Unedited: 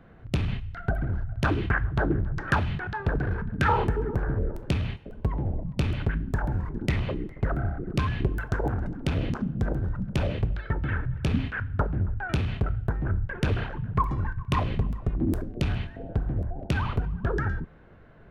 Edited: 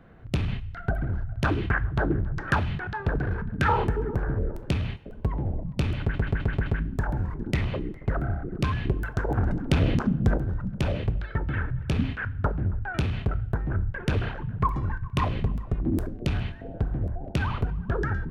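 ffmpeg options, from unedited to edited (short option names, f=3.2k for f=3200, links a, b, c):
-filter_complex "[0:a]asplit=8[a][b][c][d][e][f][g][h];[a]atrim=end=6.142[i];[b]atrim=start=6.008:end=6.142[j];[c]atrim=start=6.008:end=6.142[k];[d]atrim=start=6.008:end=6.142[l];[e]atrim=start=6.008:end=6.142[m];[f]atrim=start=6.008:end=8.722[n];[g]atrim=start=8.718:end=9.712,asetpts=PTS-STARTPTS,volume=5dB[o];[h]atrim=start=9.708[p];[i][j]acrossfade=d=0.004:c1=hsin:c2=hsin[q];[q][k]acrossfade=d=0.004:c1=hsin:c2=hsin[r];[r][l]acrossfade=d=0.004:c1=hsin:c2=hsin[s];[s][m]acrossfade=d=0.004:c1=hsin:c2=hsin[t];[t][n]acrossfade=d=0.004:c1=hsin:c2=hsin[u];[u][o]acrossfade=d=0.004:c1=hsin:c2=hsin[v];[v][p]acrossfade=d=0.004:c1=hsin:c2=hsin"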